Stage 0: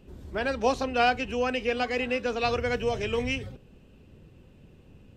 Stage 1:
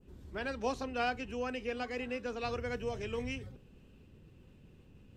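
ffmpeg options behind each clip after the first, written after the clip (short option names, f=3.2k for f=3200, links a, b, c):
-af "equalizer=f=640:w=1.7:g=-4,areverse,acompressor=mode=upward:threshold=-44dB:ratio=2.5,areverse,adynamicequalizer=threshold=0.00562:dfrequency=3200:dqfactor=0.86:tfrequency=3200:tqfactor=0.86:attack=5:release=100:ratio=0.375:range=2.5:mode=cutabove:tftype=bell,volume=-7.5dB"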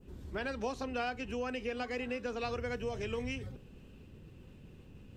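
-af "acompressor=threshold=-39dB:ratio=3,volume=4.5dB"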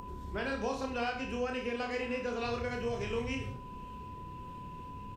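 -af "aeval=exprs='val(0)+0.00178*sin(2*PI*1000*n/s)':c=same,aecho=1:1:30|63|99.3|139.2|183.2:0.631|0.398|0.251|0.158|0.1,acompressor=mode=upward:threshold=-38dB:ratio=2.5"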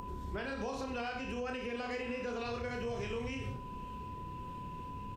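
-af "alimiter=level_in=7dB:limit=-24dB:level=0:latency=1:release=69,volume=-7dB,volume=1dB"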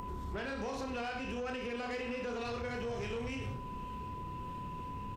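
-af "asoftclip=type=tanh:threshold=-35dB,volume=2.5dB"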